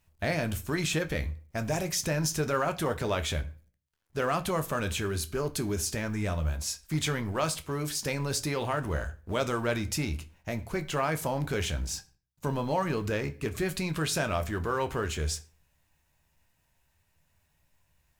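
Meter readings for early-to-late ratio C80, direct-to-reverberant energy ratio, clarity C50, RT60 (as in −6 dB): 22.0 dB, 8.0 dB, 18.0 dB, 0.40 s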